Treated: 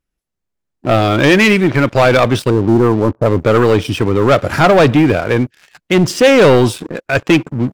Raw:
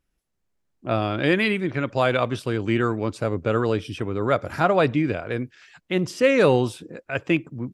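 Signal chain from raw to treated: 2.50–3.26 s: steep low-pass 1.1 kHz 36 dB/octave; waveshaping leveller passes 3; trim +3.5 dB

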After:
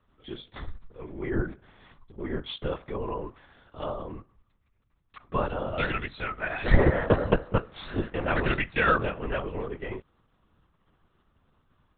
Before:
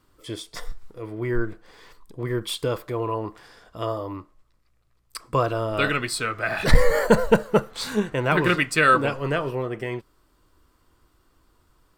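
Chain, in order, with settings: LPC vocoder at 8 kHz whisper; trim -5.5 dB

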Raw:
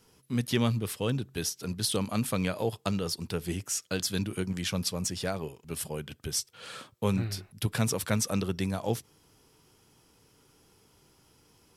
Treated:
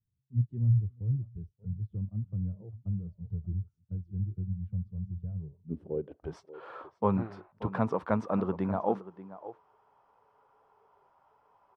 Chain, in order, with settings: low-pass sweep 110 Hz -> 1 kHz, 5.38–6.35 s; echo from a far wall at 100 m, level -14 dB; spectral noise reduction 18 dB

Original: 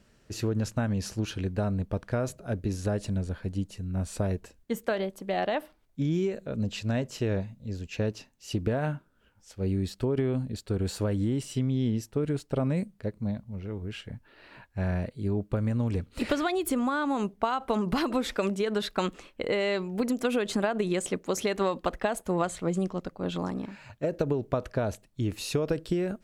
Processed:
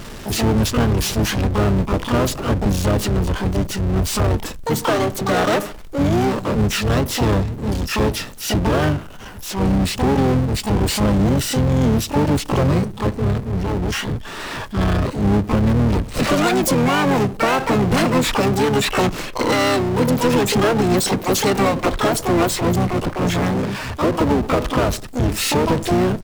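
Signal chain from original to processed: harmony voices -12 st -6 dB, -7 st -3 dB, +12 st -5 dB; power-law waveshaper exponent 0.5

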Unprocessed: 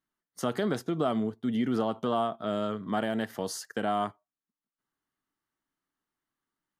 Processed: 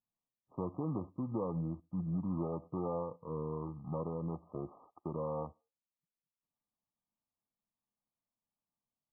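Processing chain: sorted samples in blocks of 16 samples; brick-wall FIR low-pass 1.7 kHz; wide varispeed 0.745×; trim -7.5 dB

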